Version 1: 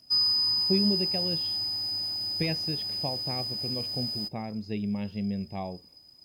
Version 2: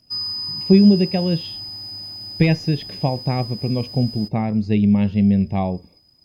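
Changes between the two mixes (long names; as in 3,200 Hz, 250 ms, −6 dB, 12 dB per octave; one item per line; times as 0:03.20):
speech +11.0 dB
master: add bass and treble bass +6 dB, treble −3 dB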